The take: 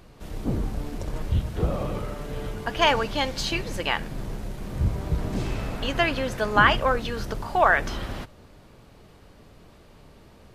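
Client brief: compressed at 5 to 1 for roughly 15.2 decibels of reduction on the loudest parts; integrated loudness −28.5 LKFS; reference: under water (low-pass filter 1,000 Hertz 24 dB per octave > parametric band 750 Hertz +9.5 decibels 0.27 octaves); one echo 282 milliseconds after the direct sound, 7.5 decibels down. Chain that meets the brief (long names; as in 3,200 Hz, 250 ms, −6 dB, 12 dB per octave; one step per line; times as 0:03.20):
downward compressor 5 to 1, threshold −30 dBFS
low-pass filter 1,000 Hz 24 dB per octave
parametric band 750 Hz +9.5 dB 0.27 octaves
single-tap delay 282 ms −7.5 dB
level +6 dB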